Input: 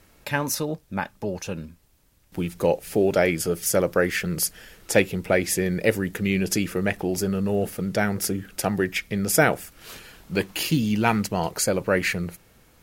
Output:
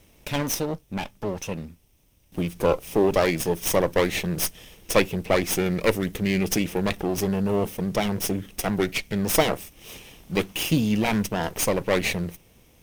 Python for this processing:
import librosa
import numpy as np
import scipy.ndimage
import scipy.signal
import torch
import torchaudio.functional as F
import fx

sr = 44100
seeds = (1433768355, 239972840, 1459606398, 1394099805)

y = fx.lower_of_two(x, sr, delay_ms=0.34)
y = y * librosa.db_to_amplitude(1.0)